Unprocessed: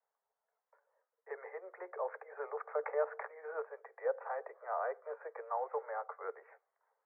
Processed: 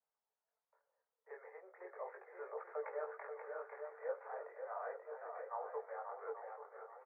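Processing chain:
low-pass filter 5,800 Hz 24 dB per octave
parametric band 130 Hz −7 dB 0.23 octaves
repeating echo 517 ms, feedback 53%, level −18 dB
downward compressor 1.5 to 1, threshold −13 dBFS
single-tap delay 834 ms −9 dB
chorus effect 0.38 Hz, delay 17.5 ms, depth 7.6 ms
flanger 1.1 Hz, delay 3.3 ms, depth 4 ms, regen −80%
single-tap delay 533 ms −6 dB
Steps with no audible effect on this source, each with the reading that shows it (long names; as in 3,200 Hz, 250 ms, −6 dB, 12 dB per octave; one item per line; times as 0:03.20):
low-pass filter 5,800 Hz: nothing at its input above 2,200 Hz
parametric band 130 Hz: nothing at its input below 340 Hz
downward compressor, threshold −13 dBFS: peak of its input −22.5 dBFS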